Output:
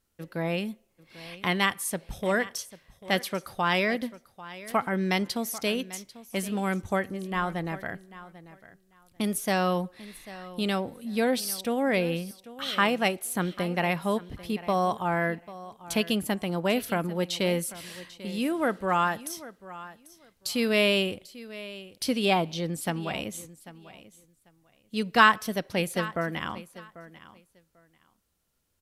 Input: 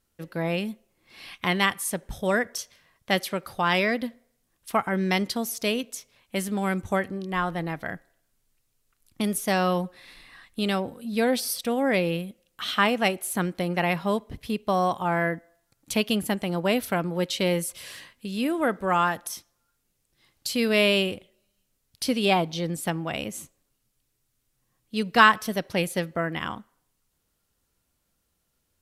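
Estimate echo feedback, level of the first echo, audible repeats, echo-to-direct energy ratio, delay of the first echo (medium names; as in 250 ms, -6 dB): 18%, -17.0 dB, 2, -17.0 dB, 793 ms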